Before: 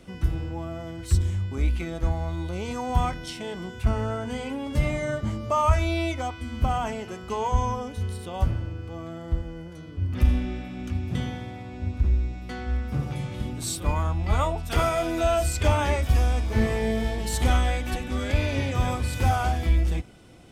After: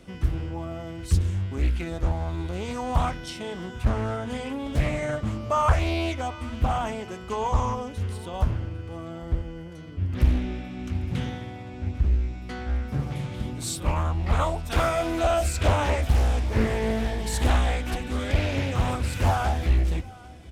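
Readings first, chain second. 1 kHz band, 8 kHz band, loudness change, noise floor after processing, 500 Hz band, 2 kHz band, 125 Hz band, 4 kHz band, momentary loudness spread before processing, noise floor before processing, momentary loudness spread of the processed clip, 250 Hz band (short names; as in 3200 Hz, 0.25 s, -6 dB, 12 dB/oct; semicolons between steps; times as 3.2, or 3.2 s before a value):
0.0 dB, -1.0 dB, 0.0 dB, -40 dBFS, 0.0 dB, 0.0 dB, 0.0 dB, 0.0 dB, 11 LU, -40 dBFS, 11 LU, 0.0 dB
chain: echo 0.798 s -21.5 dB; Doppler distortion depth 0.93 ms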